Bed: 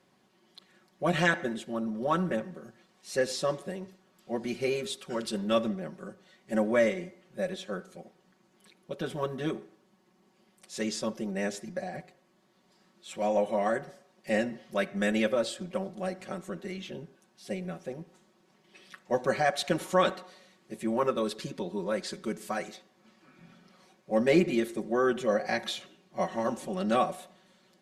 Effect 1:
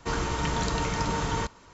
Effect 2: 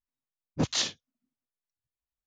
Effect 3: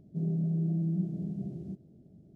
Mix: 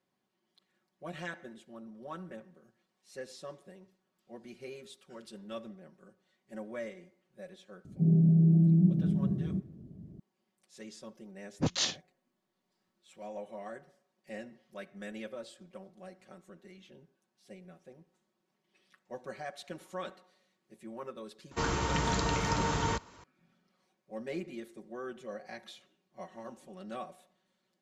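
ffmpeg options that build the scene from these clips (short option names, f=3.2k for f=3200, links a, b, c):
-filter_complex "[0:a]volume=-15.5dB[a];[3:a]lowshelf=f=450:g=11.5[b];[1:a]highpass=54[c];[b]atrim=end=2.35,asetpts=PTS-STARTPTS,volume=-3dB,afade=t=in:d=0.004:c=hsin,afade=t=out:st=2.346:d=0.004:c=hsin,adelay=7850[d];[2:a]atrim=end=2.26,asetpts=PTS-STARTPTS,volume=-2.5dB,afade=t=in:d=0.004:c=hsin,afade=t=out:st=2.256:d=0.004:c=hsin,adelay=11030[e];[c]atrim=end=1.73,asetpts=PTS-STARTPTS,volume=-2dB,afade=t=in:d=0.004:c=hsin,afade=t=out:st=1.726:d=0.004:c=hsin,adelay=21510[f];[a][d][e][f]amix=inputs=4:normalize=0"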